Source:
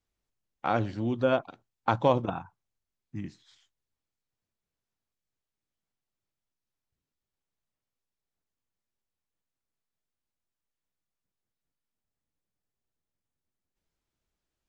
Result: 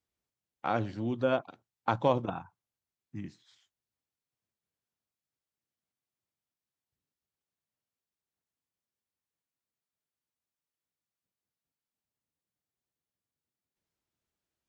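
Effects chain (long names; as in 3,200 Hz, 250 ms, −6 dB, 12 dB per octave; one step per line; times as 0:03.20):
high-pass filter 76 Hz
level −3 dB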